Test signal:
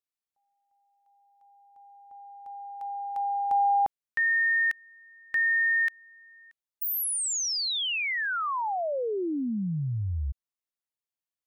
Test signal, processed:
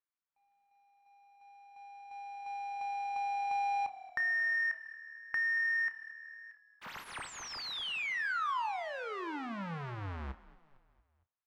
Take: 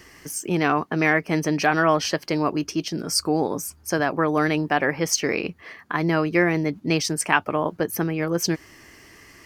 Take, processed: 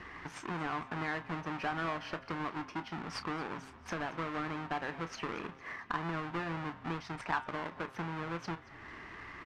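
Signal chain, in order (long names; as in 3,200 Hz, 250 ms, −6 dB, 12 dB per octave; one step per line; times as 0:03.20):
each half-wave held at its own peak
low-pass filter 2,000 Hz 12 dB per octave
hum removal 132.3 Hz, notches 29
downward compressor 2.5 to 1, threshold −38 dBFS
low shelf with overshoot 750 Hz −6.5 dB, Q 1.5
double-tracking delay 30 ms −13 dB
on a send: echo with shifted repeats 228 ms, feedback 52%, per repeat −38 Hz, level −18.5 dB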